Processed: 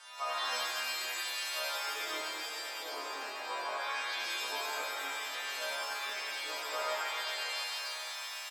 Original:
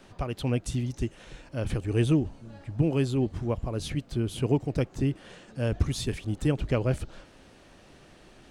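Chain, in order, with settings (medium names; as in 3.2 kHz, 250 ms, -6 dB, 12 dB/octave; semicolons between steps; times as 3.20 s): partials quantised in pitch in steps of 2 st; low-pass that closes with the level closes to 1.3 kHz, closed at -26 dBFS; in parallel at -1.5 dB: compression, threshold -34 dBFS, peak gain reduction 14.5 dB; on the sum: low-pass that closes with the level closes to 2.7 kHz, closed at -21.5 dBFS; ladder high-pass 810 Hz, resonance 35%; on a send: delay 1102 ms -21.5 dB; on the sum: pitch-shifted reverb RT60 2.9 s, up +7 st, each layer -2 dB, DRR -6.5 dB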